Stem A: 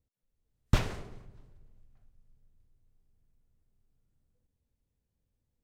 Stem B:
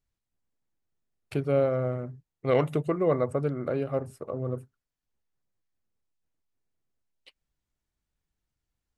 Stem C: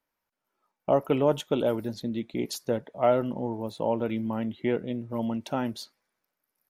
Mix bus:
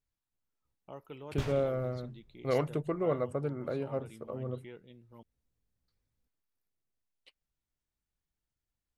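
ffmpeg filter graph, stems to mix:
ffmpeg -i stem1.wav -i stem2.wav -i stem3.wav -filter_complex "[0:a]flanger=delay=15.5:depth=5.1:speed=2.7,adelay=650,volume=0dB[link_01];[1:a]volume=-6dB[link_02];[2:a]equalizer=frequency=250:width_type=o:width=0.67:gain=-7,equalizer=frequency=630:width_type=o:width=0.67:gain=-9,equalizer=frequency=4000:width_type=o:width=0.67:gain=6,volume=-18dB,asplit=3[link_03][link_04][link_05];[link_03]atrim=end=5.23,asetpts=PTS-STARTPTS,afade=type=out:start_time=5.226:duration=0.004:curve=hsin[link_06];[link_04]atrim=start=5.23:end=5.88,asetpts=PTS-STARTPTS,volume=0[link_07];[link_05]atrim=start=5.88,asetpts=PTS-STARTPTS,afade=type=in:duration=0.004:curve=hsin[link_08];[link_06][link_07][link_08]concat=n=3:v=0:a=1,asplit=2[link_09][link_10];[link_10]apad=whole_len=276994[link_11];[link_01][link_11]sidechaincompress=threshold=-57dB:ratio=3:attack=45:release=196[link_12];[link_12][link_02][link_09]amix=inputs=3:normalize=0" out.wav

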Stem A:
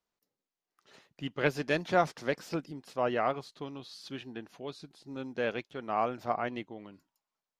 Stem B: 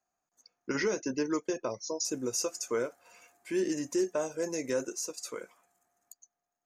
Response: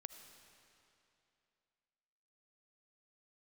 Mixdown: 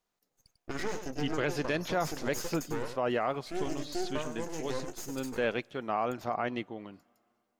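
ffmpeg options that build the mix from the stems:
-filter_complex "[0:a]volume=2.5dB,asplit=2[link_01][link_02];[link_02]volume=-18dB[link_03];[1:a]bandreject=frequency=5800:width=9.3,aeval=exprs='max(val(0),0)':channel_layout=same,volume=-1.5dB,asplit=2[link_04][link_05];[link_05]volume=-8dB[link_06];[2:a]atrim=start_sample=2205[link_07];[link_03][link_07]afir=irnorm=-1:irlink=0[link_08];[link_06]aecho=0:1:97:1[link_09];[link_01][link_04][link_08][link_09]amix=inputs=4:normalize=0,alimiter=limit=-20dB:level=0:latency=1:release=50"

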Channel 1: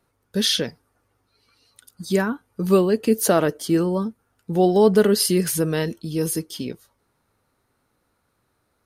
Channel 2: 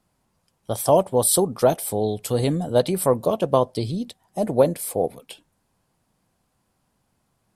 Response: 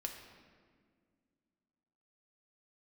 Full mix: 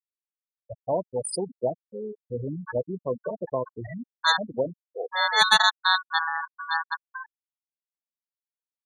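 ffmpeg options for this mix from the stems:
-filter_complex "[0:a]lowpass=2000,aeval=exprs='0.531*(cos(1*acos(clip(val(0)/0.531,-1,1)))-cos(1*PI/2))+0.0119*(cos(2*acos(clip(val(0)/0.531,-1,1)))-cos(2*PI/2))+0.0668*(cos(6*acos(clip(val(0)/0.531,-1,1)))-cos(6*PI/2))':channel_layout=same,aeval=exprs='val(0)*sgn(sin(2*PI*1300*n/s))':channel_layout=same,adelay=550,volume=-4.5dB[link_01];[1:a]equalizer=frequency=4900:width_type=o:width=0.39:gain=11.5,volume=-11dB,asplit=3[link_02][link_03][link_04];[link_03]volume=-9.5dB[link_05];[link_04]apad=whole_len=414836[link_06];[link_01][link_06]sidechaincompress=threshold=-52dB:ratio=3:attack=5:release=115[link_07];[2:a]atrim=start_sample=2205[link_08];[link_05][link_08]afir=irnorm=-1:irlink=0[link_09];[link_07][link_02][link_09]amix=inputs=3:normalize=0,afftfilt=real='re*gte(hypot(re,im),0.126)':imag='im*gte(hypot(re,im),0.126)':win_size=1024:overlap=0.75,equalizer=frequency=3600:width=2.6:gain=10"

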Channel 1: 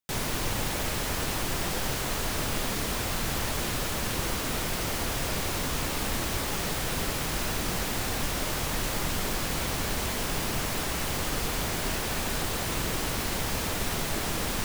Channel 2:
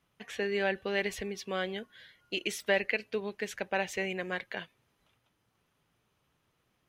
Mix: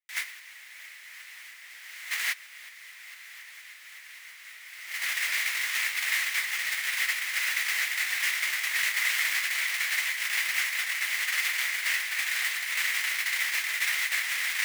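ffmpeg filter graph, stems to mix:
ffmpeg -i stem1.wav -i stem2.wav -filter_complex "[0:a]volume=2.5dB[link_01];[1:a]lowshelf=frequency=410:gain=-4.5,acompressor=threshold=-38dB:ratio=16,volume=-12.5dB,asplit=2[link_02][link_03];[link_03]apad=whole_len=645639[link_04];[link_01][link_04]sidechaincompress=threshold=-58dB:ratio=4:attack=28:release=578[link_05];[link_05][link_02]amix=inputs=2:normalize=0,agate=range=-15dB:threshold=-26dB:ratio=16:detection=peak,highpass=frequency=2000:width_type=q:width=5.9" out.wav

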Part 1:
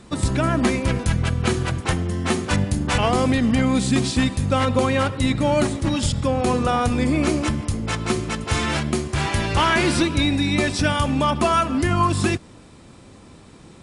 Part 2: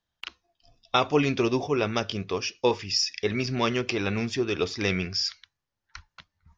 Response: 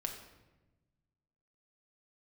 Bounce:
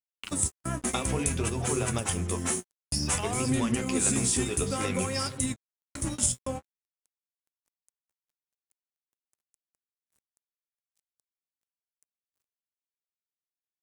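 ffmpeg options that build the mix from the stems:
-filter_complex "[0:a]alimiter=limit=-16.5dB:level=0:latency=1:release=402,aexciter=amount=9.2:drive=4.5:freq=6300,adelay=200,volume=-1dB[link_01];[1:a]bandreject=frequency=50:width_type=h:width=6,bandreject=frequency=100:width_type=h:width=6,bandreject=frequency=150:width_type=h:width=6,bandreject=frequency=200:width_type=h:width=6,bandreject=frequency=250:width_type=h:width=6,bandreject=frequency=300:width_type=h:width=6,bandreject=frequency=350:width_type=h:width=6,bandreject=frequency=400:width_type=h:width=6,bandreject=frequency=450:width_type=h:width=6,acompressor=threshold=-25dB:ratio=6,adynamicequalizer=threshold=0.00562:dfrequency=1600:dqfactor=0.7:tfrequency=1600:tqfactor=0.7:attack=5:release=100:ratio=0.375:range=1.5:mode=cutabove:tftype=highshelf,volume=1.5dB,asplit=3[link_02][link_03][link_04];[link_02]atrim=end=2.37,asetpts=PTS-STARTPTS,afade=type=out:start_time=2.366:duration=0.004:curve=hsin[link_05];[link_03]atrim=start=2.37:end=2.92,asetpts=PTS-STARTPTS,volume=0[link_06];[link_04]atrim=start=2.92,asetpts=PTS-STARTPTS,afade=type=in:duration=0.004:curve=hsin[link_07];[link_05][link_06][link_07]concat=n=3:v=0:a=1,asplit=2[link_08][link_09];[link_09]apad=whole_len=618309[link_10];[link_01][link_10]sidechaingate=range=-33dB:threshold=-59dB:ratio=16:detection=peak[link_11];[link_11][link_08]amix=inputs=2:normalize=0,flanger=delay=7.8:depth=8.9:regen=46:speed=0.56:shape=sinusoidal,aeval=exprs='sgn(val(0))*max(abs(val(0))-0.00316,0)':channel_layout=same"

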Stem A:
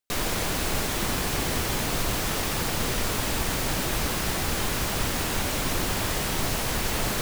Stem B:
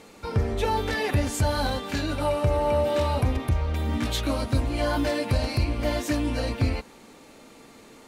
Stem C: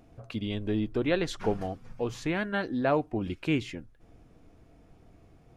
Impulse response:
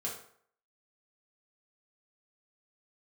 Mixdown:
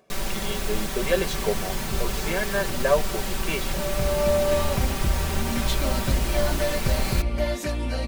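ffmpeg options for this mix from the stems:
-filter_complex "[0:a]volume=-5.5dB[link_01];[1:a]adelay=1550,volume=-2.5dB[link_02];[2:a]highpass=290,aecho=1:1:1.8:0.65,volume=0.5dB,asplit=2[link_03][link_04];[link_04]apad=whole_len=424524[link_05];[link_02][link_05]sidechaincompress=threshold=-39dB:ratio=8:attack=16:release=625[link_06];[link_01][link_06][link_03]amix=inputs=3:normalize=0,lowshelf=frequency=99:gain=7,aecho=1:1:5.2:0.68"

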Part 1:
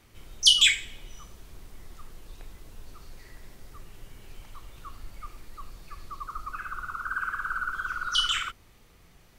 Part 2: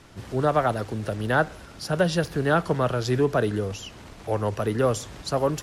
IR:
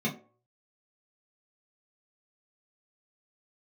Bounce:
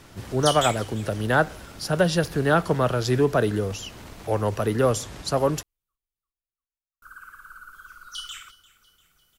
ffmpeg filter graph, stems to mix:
-filter_complex "[0:a]aemphasis=mode=production:type=50kf,volume=-14.5dB,asplit=3[link_01][link_02][link_03];[link_01]atrim=end=4.92,asetpts=PTS-STARTPTS,afade=type=out:start_time=4.916:duration=0.004:curve=hsin[link_04];[link_02]atrim=start=4.92:end=7.02,asetpts=PTS-STARTPTS,volume=0[link_05];[link_03]atrim=start=7.02,asetpts=PTS-STARTPTS,afade=type=in:duration=0.004:curve=hsin[link_06];[link_04][link_05][link_06]concat=n=3:v=0:a=1,asplit=2[link_07][link_08];[link_08]volume=-20dB[link_09];[1:a]volume=1.5dB[link_10];[link_09]aecho=0:1:346|692|1038|1384|1730|2076|2422:1|0.51|0.26|0.133|0.0677|0.0345|0.0176[link_11];[link_07][link_10][link_11]amix=inputs=3:normalize=0,highshelf=frequency=8400:gain=5"

